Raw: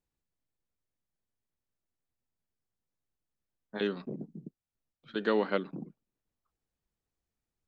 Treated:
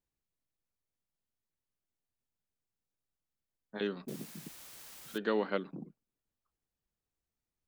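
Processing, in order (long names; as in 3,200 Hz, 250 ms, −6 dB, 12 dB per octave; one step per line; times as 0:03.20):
0:04.08–0:05.18: bit-depth reduction 8 bits, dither triangular
level −3.5 dB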